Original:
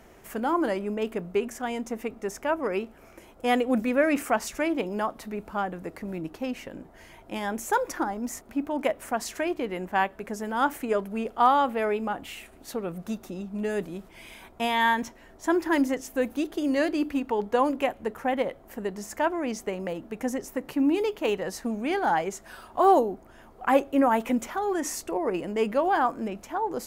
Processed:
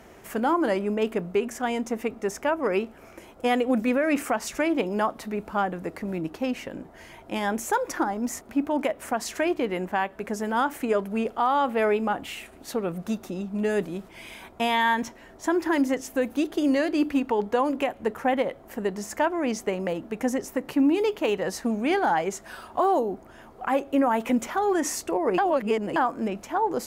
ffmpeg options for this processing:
ffmpeg -i in.wav -filter_complex "[0:a]asplit=3[link_01][link_02][link_03];[link_01]atrim=end=25.382[link_04];[link_02]atrim=start=25.378:end=25.962,asetpts=PTS-STARTPTS,areverse[link_05];[link_03]atrim=start=25.958[link_06];[link_04][link_05]acrossfade=duration=0.004:curve1=hsin:curve2=hsin[link_07];[link_07][link_06]acrossfade=duration=0.004:curve1=hsin:curve2=hsin,highpass=frequency=58:poles=1,highshelf=frequency=11000:gain=-4.5,alimiter=limit=-18dB:level=0:latency=1:release=191,volume=4dB" out.wav

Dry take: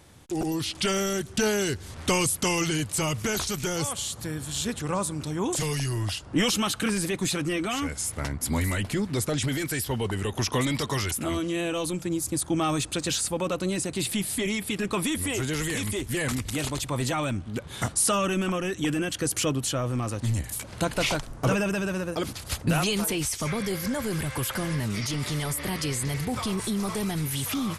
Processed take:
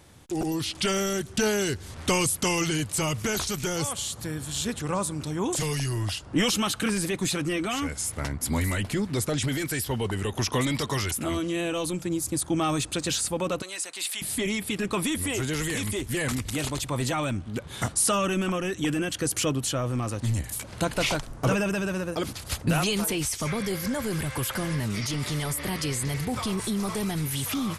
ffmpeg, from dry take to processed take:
ffmpeg -i in.wav -filter_complex "[0:a]asettb=1/sr,asplit=3[link_01][link_02][link_03];[link_01]atrim=end=13.624[link_04];[link_02]atrim=start=13.62:end=14.22,asetpts=PTS-STARTPTS,afade=type=in:duration=0.004:curve=qsin,afade=type=out:start_time=0.596:duration=0.004:curve=qsin,highpass=960[link_05];[link_03]atrim=start=14.216[link_06];[link_04][link_05]acrossfade=duration=0.004:curve1=hsin:curve2=qsin[link_07];[link_07][link_06]acrossfade=duration=0.004:curve1=qsin:curve2=hsin" out.wav

